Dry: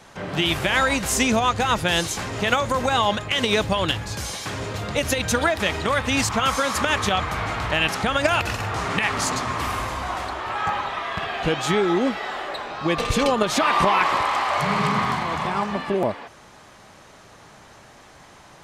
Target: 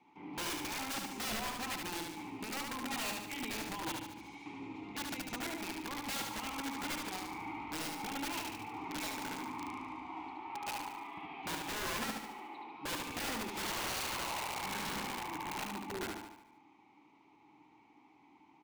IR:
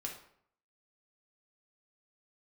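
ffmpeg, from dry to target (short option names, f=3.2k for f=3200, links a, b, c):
-filter_complex "[0:a]asplit=3[a][b][c];[a]bandpass=f=300:t=q:w=8,volume=0dB[d];[b]bandpass=f=870:t=q:w=8,volume=-6dB[e];[c]bandpass=f=2.24k:t=q:w=8,volume=-9dB[f];[d][e][f]amix=inputs=3:normalize=0,aeval=exprs='(mod(31.6*val(0)+1,2)-1)/31.6':c=same,aecho=1:1:73|146|219|292|365|438|511:0.631|0.328|0.171|0.0887|0.0461|0.024|0.0125,volume=-4.5dB"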